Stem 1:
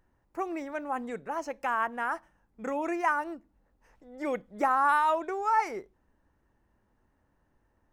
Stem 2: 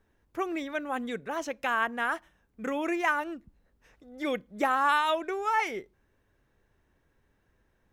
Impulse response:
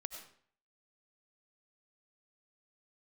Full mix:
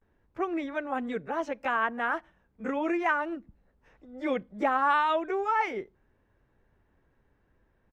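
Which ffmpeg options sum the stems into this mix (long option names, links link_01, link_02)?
-filter_complex "[0:a]alimiter=limit=-22.5dB:level=0:latency=1:release=276,dynaudnorm=framelen=100:gausssize=11:maxgain=11.5dB,volume=-18dB[link_01];[1:a]lowpass=frequency=2100:poles=1,adelay=15,volume=1.5dB[link_02];[link_01][link_02]amix=inputs=2:normalize=0,highshelf=frequency=7700:gain=-11"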